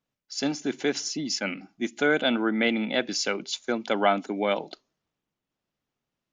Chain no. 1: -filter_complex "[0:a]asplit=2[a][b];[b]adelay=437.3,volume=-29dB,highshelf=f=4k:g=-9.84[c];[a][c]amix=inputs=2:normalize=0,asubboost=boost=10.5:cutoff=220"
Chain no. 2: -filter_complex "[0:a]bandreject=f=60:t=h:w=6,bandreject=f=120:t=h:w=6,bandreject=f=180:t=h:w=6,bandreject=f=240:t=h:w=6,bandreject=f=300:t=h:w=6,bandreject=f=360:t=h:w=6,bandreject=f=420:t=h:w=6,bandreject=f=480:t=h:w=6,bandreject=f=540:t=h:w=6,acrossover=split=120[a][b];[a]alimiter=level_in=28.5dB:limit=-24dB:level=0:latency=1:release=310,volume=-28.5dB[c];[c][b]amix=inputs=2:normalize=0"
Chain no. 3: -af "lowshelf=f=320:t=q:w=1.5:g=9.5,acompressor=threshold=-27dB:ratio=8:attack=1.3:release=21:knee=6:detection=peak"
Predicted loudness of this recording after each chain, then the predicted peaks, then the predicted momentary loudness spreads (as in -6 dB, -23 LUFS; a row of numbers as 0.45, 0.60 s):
-23.0, -27.5, -31.0 LUFS; -7.5, -9.5, -18.0 dBFS; 12, 8, 5 LU